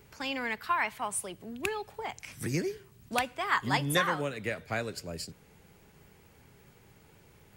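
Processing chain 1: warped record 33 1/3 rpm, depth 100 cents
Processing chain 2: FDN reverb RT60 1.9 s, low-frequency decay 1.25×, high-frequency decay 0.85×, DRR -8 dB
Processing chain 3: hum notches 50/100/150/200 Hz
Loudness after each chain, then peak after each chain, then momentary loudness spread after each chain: -32.5 LUFS, -23.5 LUFS, -32.5 LUFS; -14.0 dBFS, -5.0 dBFS, -14.0 dBFS; 13 LU, 11 LU, 12 LU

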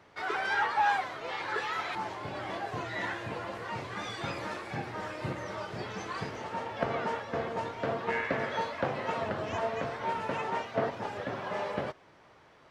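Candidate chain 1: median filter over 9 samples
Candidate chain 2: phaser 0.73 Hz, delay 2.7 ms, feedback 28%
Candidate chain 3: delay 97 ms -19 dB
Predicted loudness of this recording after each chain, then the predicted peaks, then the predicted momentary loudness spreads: -34.5 LUFS, -33.5 LUFS, -34.0 LUFS; -14.0 dBFS, -11.5 dBFS, -14.0 dBFS; 8 LU, 8 LU, 8 LU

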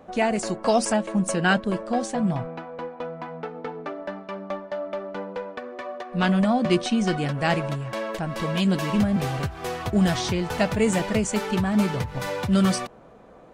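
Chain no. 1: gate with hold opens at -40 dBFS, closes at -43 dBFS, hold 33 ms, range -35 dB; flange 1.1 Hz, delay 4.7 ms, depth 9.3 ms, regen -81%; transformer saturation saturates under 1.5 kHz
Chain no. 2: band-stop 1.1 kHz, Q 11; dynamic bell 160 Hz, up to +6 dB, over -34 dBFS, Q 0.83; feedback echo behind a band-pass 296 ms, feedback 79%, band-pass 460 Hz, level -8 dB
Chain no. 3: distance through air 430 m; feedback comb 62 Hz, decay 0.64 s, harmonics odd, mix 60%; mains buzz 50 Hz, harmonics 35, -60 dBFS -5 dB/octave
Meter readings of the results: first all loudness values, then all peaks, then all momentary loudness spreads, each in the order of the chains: -34.0 LUFS, -20.5 LUFS, -32.0 LUFS; -13.5 dBFS, -5.0 dBFS, -16.0 dBFS; 9 LU, 15 LU, 15 LU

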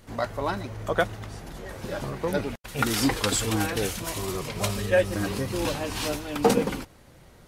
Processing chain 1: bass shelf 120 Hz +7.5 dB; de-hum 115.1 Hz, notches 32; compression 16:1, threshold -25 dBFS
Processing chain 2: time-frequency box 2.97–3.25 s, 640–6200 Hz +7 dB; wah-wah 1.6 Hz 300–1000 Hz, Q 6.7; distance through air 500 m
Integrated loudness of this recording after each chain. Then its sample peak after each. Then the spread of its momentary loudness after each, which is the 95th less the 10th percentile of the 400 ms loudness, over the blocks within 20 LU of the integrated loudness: -31.5 LUFS, -39.0 LUFS; -12.5 dBFS, -16.5 dBFS; 8 LU, 14 LU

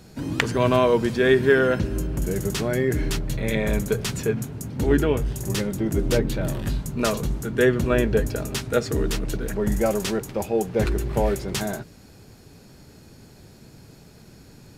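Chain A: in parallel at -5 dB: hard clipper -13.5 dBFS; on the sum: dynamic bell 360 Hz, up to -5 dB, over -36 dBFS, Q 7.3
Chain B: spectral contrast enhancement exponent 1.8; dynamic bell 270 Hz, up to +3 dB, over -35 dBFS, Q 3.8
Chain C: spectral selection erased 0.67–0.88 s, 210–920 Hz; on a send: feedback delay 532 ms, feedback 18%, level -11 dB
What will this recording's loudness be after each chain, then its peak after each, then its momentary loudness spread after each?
-20.5 LUFS, -24.0 LUFS, -23.5 LUFS; -3.5 dBFS, -5.0 dBFS, -5.0 dBFS; 8 LU, 10 LU, 8 LU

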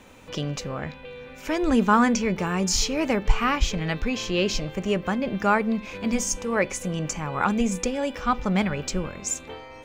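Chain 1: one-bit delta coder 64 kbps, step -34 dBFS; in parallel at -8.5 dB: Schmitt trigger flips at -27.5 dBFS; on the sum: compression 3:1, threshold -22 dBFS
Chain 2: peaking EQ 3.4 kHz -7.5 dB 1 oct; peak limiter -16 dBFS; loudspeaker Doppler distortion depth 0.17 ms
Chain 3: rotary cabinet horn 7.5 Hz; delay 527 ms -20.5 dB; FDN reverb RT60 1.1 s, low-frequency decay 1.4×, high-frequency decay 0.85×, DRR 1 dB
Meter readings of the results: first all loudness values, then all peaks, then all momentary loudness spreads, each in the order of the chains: -27.0 LUFS, -27.5 LUFS, -24.5 LUFS; -12.0 dBFS, -16.0 dBFS, -6.5 dBFS; 6 LU, 7 LU, 10 LU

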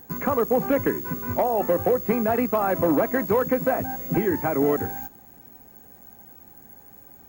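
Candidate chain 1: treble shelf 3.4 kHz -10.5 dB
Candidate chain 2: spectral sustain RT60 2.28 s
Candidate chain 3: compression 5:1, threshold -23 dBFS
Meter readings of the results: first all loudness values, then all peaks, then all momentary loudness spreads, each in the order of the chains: -24.0 LUFS, -18.5 LUFS, -27.5 LUFS; -14.0 dBFS, -6.5 dBFS, -15.0 dBFS; 6 LU, 8 LU, 19 LU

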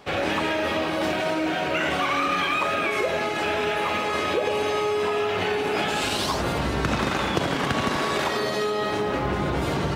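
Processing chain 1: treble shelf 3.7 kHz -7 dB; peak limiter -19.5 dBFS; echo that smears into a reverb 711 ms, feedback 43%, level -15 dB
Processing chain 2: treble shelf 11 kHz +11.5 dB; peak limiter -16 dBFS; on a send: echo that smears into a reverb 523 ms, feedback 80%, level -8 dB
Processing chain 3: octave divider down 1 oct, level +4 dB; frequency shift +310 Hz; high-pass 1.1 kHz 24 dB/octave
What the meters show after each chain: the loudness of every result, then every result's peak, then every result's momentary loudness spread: -28.0 LUFS, -23.5 LUFS, -26.5 LUFS; -18.0 dBFS, -11.5 dBFS, -9.0 dBFS; 2 LU, 2 LU, 6 LU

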